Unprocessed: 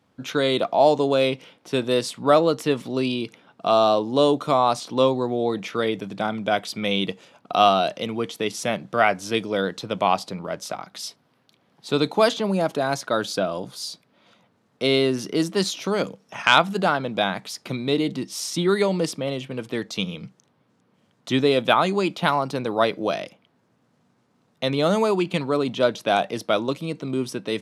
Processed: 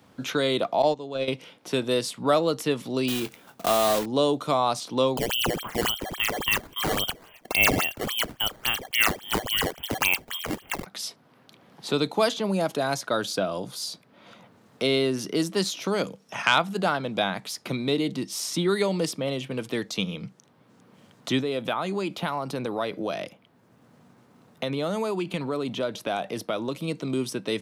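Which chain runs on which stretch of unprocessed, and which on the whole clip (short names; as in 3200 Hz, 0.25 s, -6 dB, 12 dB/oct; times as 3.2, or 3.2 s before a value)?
0.82–1.28 LPF 8400 Hz 24 dB/oct + gate -18 dBFS, range -12 dB + high shelf 6100 Hz -9.5 dB
3.08–4.06 block floating point 3-bit + doubler 23 ms -13 dB
5.17–10.86 inverted band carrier 3400 Hz + decimation with a swept rate 10×, swing 160% 3.6 Hz
21.41–26.88 compressor 2:1, threshold -26 dBFS + bell 5700 Hz -4.5 dB 2 oct
whole clip: high shelf 11000 Hz +7 dB; three-band squash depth 40%; gain -3 dB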